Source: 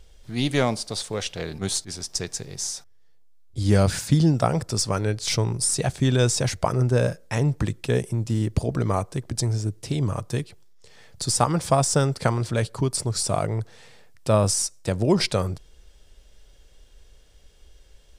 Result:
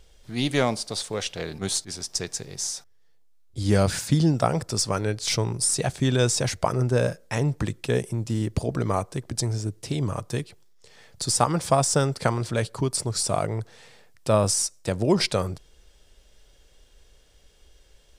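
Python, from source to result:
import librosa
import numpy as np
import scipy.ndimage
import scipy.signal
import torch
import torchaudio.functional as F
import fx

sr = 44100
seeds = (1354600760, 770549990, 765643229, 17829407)

y = fx.low_shelf(x, sr, hz=140.0, db=-5.0)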